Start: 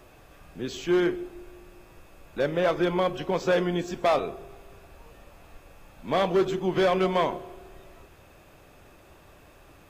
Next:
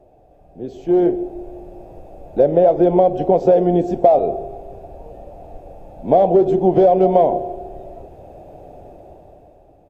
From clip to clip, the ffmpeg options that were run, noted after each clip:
ffmpeg -i in.wav -af "dynaudnorm=framelen=190:gausssize=11:maxgain=13dB,firequalizer=gain_entry='entry(210,0);entry(730,9);entry(1100,-18)':delay=0.05:min_phase=1,acompressor=threshold=-8dB:ratio=6,volume=-1dB" out.wav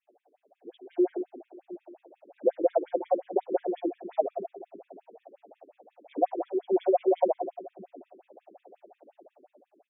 ffmpeg -i in.wav -filter_complex "[0:a]aemphasis=mode=production:type=75kf,acrossover=split=220|1800[link_01][link_02][link_03];[link_02]adelay=70[link_04];[link_01]adelay=710[link_05];[link_05][link_04][link_03]amix=inputs=3:normalize=0,afftfilt=real='re*between(b*sr/1024,290*pow(2700/290,0.5+0.5*sin(2*PI*5.6*pts/sr))/1.41,290*pow(2700/290,0.5+0.5*sin(2*PI*5.6*pts/sr))*1.41)':imag='im*between(b*sr/1024,290*pow(2700/290,0.5+0.5*sin(2*PI*5.6*pts/sr))/1.41,290*pow(2700/290,0.5+0.5*sin(2*PI*5.6*pts/sr))*1.41)':win_size=1024:overlap=0.75,volume=-6.5dB" out.wav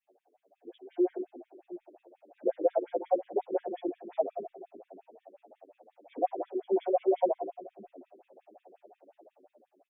ffmpeg -i in.wav -filter_complex "[0:a]asplit=2[link_01][link_02];[link_02]adelay=9.1,afreqshift=2.9[link_03];[link_01][link_03]amix=inputs=2:normalize=1" out.wav

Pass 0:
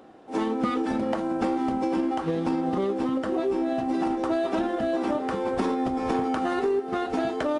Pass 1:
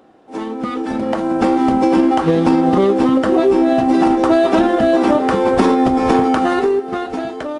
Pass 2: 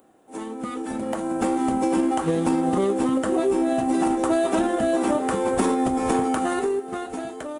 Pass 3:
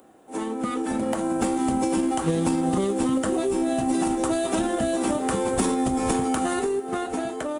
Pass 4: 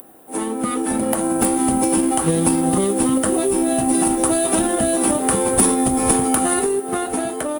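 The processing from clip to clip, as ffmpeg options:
ffmpeg -i in.wav -af "dynaudnorm=framelen=220:gausssize=11:maxgain=13dB,volume=1dB" out.wav
ffmpeg -i in.wav -af "aexciter=amount=5.4:drive=7.7:freq=7100,volume=-8.5dB" out.wav
ffmpeg -i in.wav -filter_complex "[0:a]acrossover=split=190|3000[link_01][link_02][link_03];[link_02]acompressor=threshold=-27dB:ratio=6[link_04];[link_01][link_04][link_03]amix=inputs=3:normalize=0,volume=4dB" out.wav
ffmpeg -i in.wav -af "aexciter=amount=9.6:drive=5.2:freq=9800,volume=5dB" out.wav

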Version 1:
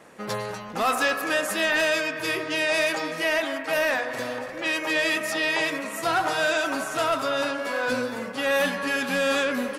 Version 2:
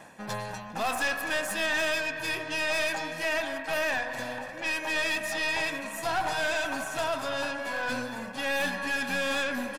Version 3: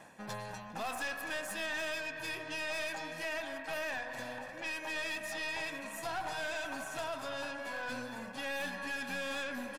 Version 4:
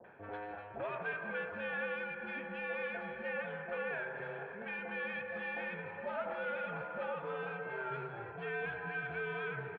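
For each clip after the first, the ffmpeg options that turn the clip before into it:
ffmpeg -i in.wav -af "aecho=1:1:1.2:0.56,areverse,acompressor=mode=upward:threshold=-30dB:ratio=2.5,areverse,aeval=exprs='(tanh(10*val(0)+0.45)-tanh(0.45))/10':channel_layout=same,volume=-3dB" out.wav
ffmpeg -i in.wav -af "acompressor=threshold=-35dB:ratio=1.5,volume=-5.5dB" out.wav
ffmpeg -i in.wav -filter_complex "[0:a]highpass=frequency=190:width_type=q:width=0.5412,highpass=frequency=190:width_type=q:width=1.307,lowpass=frequency=3300:width_type=q:width=0.5176,lowpass=frequency=3300:width_type=q:width=0.7071,lowpass=frequency=3300:width_type=q:width=1.932,afreqshift=-110,acrossover=split=150 2200:gain=0.224 1 0.158[link_01][link_02][link_03];[link_01][link_02][link_03]amix=inputs=3:normalize=0,acrossover=split=790[link_04][link_05];[link_05]adelay=40[link_06];[link_04][link_06]amix=inputs=2:normalize=0,volume=2dB" out.wav

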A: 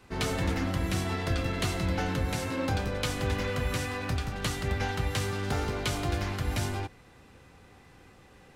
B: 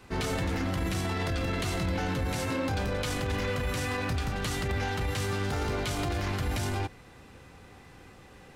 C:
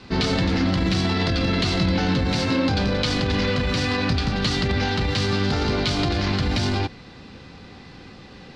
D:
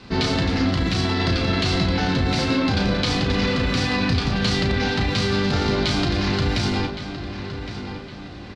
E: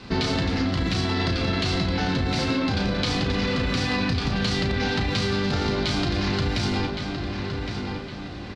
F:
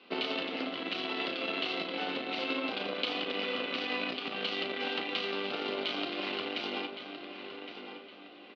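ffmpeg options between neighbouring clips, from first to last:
ffmpeg -i in.wav -af "alimiter=level_in=2dB:limit=-24dB:level=0:latency=1:release=11,volume=-2dB,volume=3.5dB" out.wav
ffmpeg -i in.wav -af "lowpass=frequency=4500:width_type=q:width=3.1,equalizer=frequency=210:width_type=o:width=1.2:gain=7.5,volume=5.5dB" out.wav
ffmpeg -i in.wav -filter_complex "[0:a]asplit=2[link_01][link_02];[link_02]adelay=35,volume=-7dB[link_03];[link_01][link_03]amix=inputs=2:normalize=0,asplit=2[link_04][link_05];[link_05]adelay=1114,lowpass=frequency=3900:poles=1,volume=-10dB,asplit=2[link_06][link_07];[link_07]adelay=1114,lowpass=frequency=3900:poles=1,volume=0.45,asplit=2[link_08][link_09];[link_09]adelay=1114,lowpass=frequency=3900:poles=1,volume=0.45,asplit=2[link_10][link_11];[link_11]adelay=1114,lowpass=frequency=3900:poles=1,volume=0.45,asplit=2[link_12][link_13];[link_13]adelay=1114,lowpass=frequency=3900:poles=1,volume=0.45[link_14];[link_04][link_06][link_08][link_10][link_12][link_14]amix=inputs=6:normalize=0" out.wav
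ffmpeg -i in.wav -af "acompressor=threshold=-22dB:ratio=6,volume=1.5dB" out.wav
ffmpeg -i in.wav -af "aeval=exprs='0.282*(cos(1*acos(clip(val(0)/0.282,-1,1)))-cos(1*PI/2))+0.0501*(cos(3*acos(clip(val(0)/0.282,-1,1)))-cos(3*PI/2))+0.00708*(cos(7*acos(clip(val(0)/0.282,-1,1)))-cos(7*PI/2))':channel_layout=same,highpass=frequency=310:width=0.5412,highpass=frequency=310:width=1.3066,equalizer=frequency=370:width_type=q:width=4:gain=-3,equalizer=frequency=920:width_type=q:width=4:gain=-6,equalizer=frequency=1700:width_type=q:width=4:gain=-9,equalizer=frequency=2900:width_type=q:width=4:gain=7,lowpass=frequency=3500:width=0.5412,lowpass=frequency=3500:width=1.3066" out.wav

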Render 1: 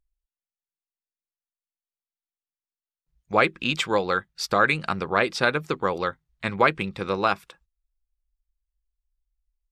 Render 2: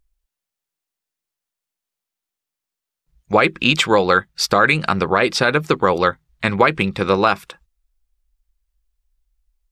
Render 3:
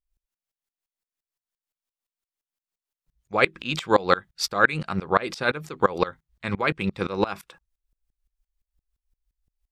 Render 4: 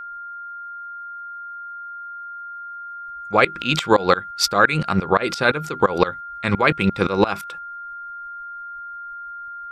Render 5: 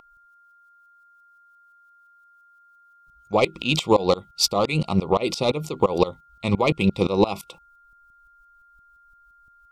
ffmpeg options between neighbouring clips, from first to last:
ffmpeg -i in.wav -af "alimiter=level_in=11dB:limit=-1dB:release=50:level=0:latency=1,volume=-1dB" out.wav
ffmpeg -i in.wav -af "aeval=exprs='val(0)*pow(10,-24*if(lt(mod(-5.8*n/s,1),2*abs(-5.8)/1000),1-mod(-5.8*n/s,1)/(2*abs(-5.8)/1000),(mod(-5.8*n/s,1)-2*abs(-5.8)/1000)/(1-2*abs(-5.8)/1000))/20)':channel_layout=same" out.wav
ffmpeg -i in.wav -af "aeval=exprs='val(0)+0.0112*sin(2*PI*1400*n/s)':channel_layout=same,alimiter=level_in=8.5dB:limit=-1dB:release=50:level=0:latency=1,volume=-1dB" out.wav
ffmpeg -i in.wav -af "asoftclip=type=tanh:threshold=-4.5dB,asuperstop=centerf=1600:order=4:qfactor=1.1" out.wav

